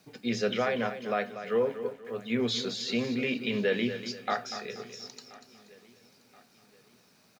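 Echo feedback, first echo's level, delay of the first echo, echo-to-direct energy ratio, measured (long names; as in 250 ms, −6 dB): repeats not evenly spaced, −11.0 dB, 240 ms, −10.0 dB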